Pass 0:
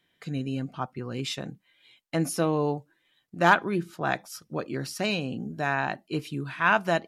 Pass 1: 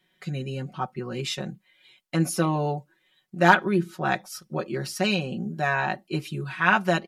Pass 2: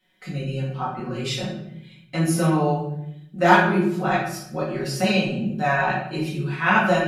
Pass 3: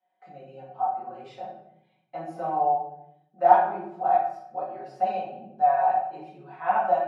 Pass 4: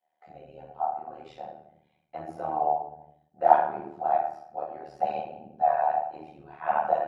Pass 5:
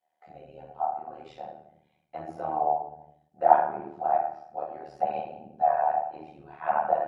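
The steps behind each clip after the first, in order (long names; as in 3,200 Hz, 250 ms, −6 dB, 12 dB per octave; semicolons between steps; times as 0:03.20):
comb filter 5.4 ms, depth 89%
rectangular room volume 180 cubic metres, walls mixed, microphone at 2 metres; level −4 dB
resonant band-pass 750 Hz, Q 8.5; level +6.5 dB
amplitude modulation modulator 76 Hz, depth 70%; level +1 dB
treble cut that deepens with the level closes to 2,300 Hz, closed at −23 dBFS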